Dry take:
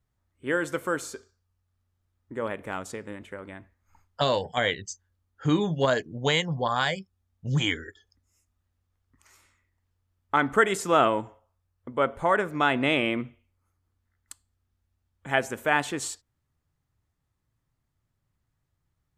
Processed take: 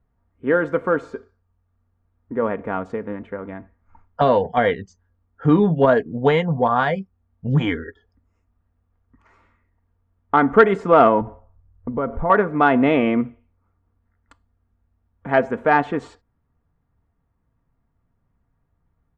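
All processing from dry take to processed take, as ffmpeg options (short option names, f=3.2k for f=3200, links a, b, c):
-filter_complex "[0:a]asettb=1/sr,asplit=3[a][b][c];[a]atrim=end=11.214[d];[b]atrim=start=11.21:end=12.3,asetpts=PTS-STARTPTS,afade=t=in:d=0.004:c=qsin,afade=t=out:st=1.086:d=0.004:c=qsin,aemphasis=mode=reproduction:type=bsi,acompressor=threshold=-34dB:ratio=2:attack=3.2:release=140:knee=1:detection=peak[e];[c]atrim=start=12.296[f];[d][e]acrossfade=d=0.004:c1=hsin:c2=qsin[g];[g][f]acrossfade=d=0.004:c1=qsin:c2=hsin,lowpass=1.3k,aecho=1:1:4.3:0.39,acontrast=70,volume=2.5dB"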